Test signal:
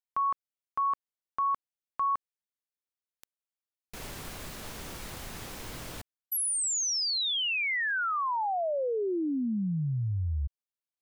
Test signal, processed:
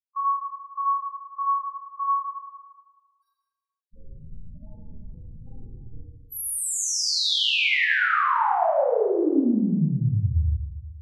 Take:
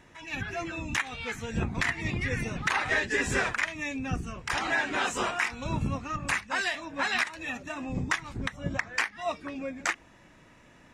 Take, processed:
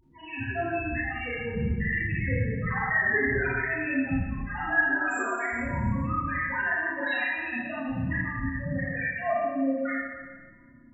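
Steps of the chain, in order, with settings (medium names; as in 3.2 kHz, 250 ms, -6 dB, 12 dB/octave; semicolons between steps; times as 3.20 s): loudest bins only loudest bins 4; Schroeder reverb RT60 1.4 s, combs from 26 ms, DRR -7.5 dB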